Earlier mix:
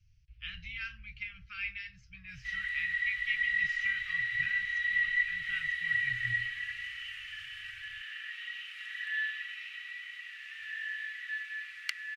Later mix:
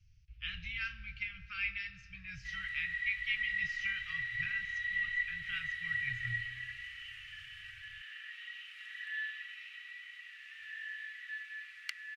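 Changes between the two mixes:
background -5.5 dB; reverb: on, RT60 1.9 s

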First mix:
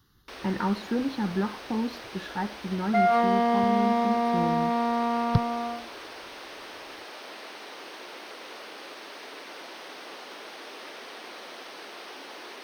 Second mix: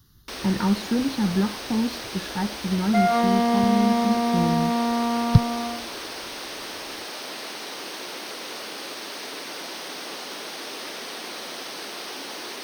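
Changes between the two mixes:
first sound +5.0 dB; master: add tone controls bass +9 dB, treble +10 dB

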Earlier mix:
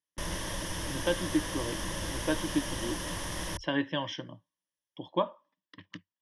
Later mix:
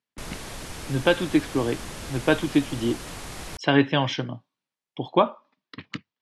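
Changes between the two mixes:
speech +12.0 dB; master: remove ripple EQ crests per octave 1.2, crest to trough 10 dB

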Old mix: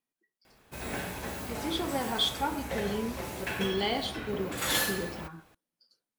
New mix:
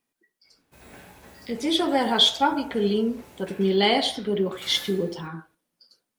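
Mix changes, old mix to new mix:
speech +10.0 dB; background -11.5 dB

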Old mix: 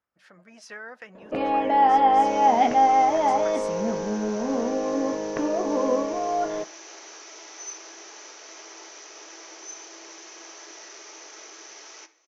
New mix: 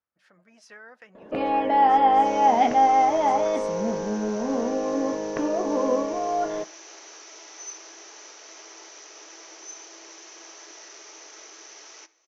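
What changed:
speech -6.5 dB; second sound: send -6.0 dB

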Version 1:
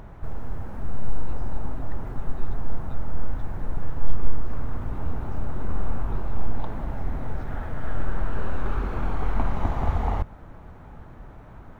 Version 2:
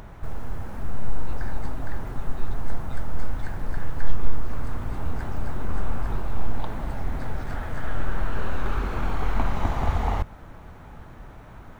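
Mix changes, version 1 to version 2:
second sound: unmuted; master: add high shelf 2000 Hz +9 dB

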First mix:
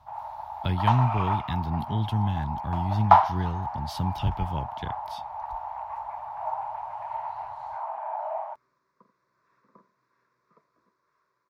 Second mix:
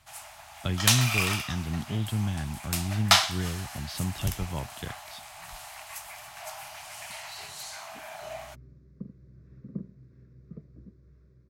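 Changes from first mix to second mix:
first sound: remove synth low-pass 910 Hz, resonance Q 9.1; second sound: remove resonant high-pass 1000 Hz, resonance Q 7.5; master: add bell 65 Hz -4 dB 2.6 oct

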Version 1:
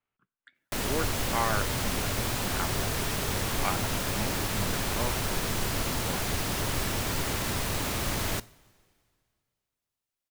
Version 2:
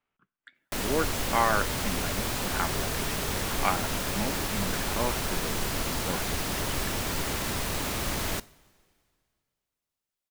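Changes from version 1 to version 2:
speech +4.5 dB; master: add bell 110 Hz -6 dB 0.39 oct

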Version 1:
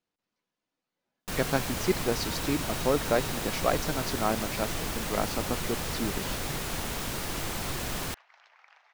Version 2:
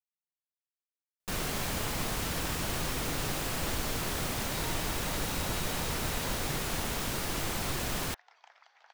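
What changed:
speech: muted; second sound: entry +2.35 s

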